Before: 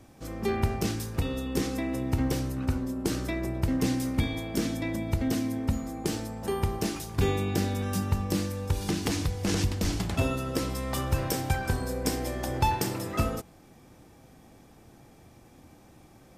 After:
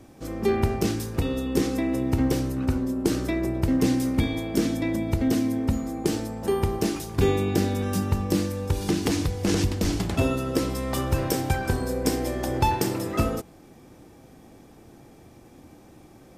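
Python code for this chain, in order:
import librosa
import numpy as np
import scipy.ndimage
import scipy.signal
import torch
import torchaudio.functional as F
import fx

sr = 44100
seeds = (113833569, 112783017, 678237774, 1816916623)

y = fx.peak_eq(x, sr, hz=350.0, db=5.0, octaves=1.3)
y = F.gain(torch.from_numpy(y), 2.0).numpy()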